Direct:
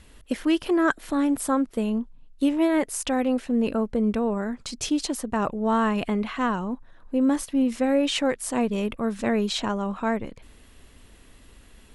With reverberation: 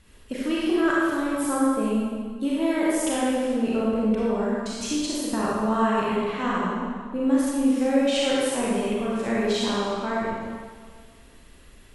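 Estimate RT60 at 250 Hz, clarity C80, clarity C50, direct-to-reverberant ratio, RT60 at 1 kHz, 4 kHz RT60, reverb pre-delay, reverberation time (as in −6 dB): 1.6 s, −1.0 dB, −3.5 dB, −6.5 dB, 1.8 s, 1.4 s, 30 ms, 1.7 s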